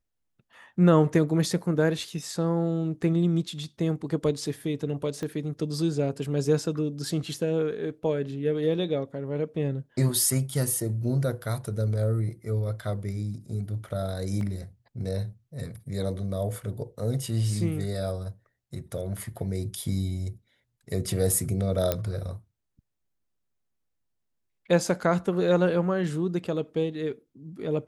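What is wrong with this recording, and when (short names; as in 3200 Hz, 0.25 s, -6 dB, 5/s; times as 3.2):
5.23 pop -21 dBFS
14.41 gap 2.3 ms
21.92 pop -10 dBFS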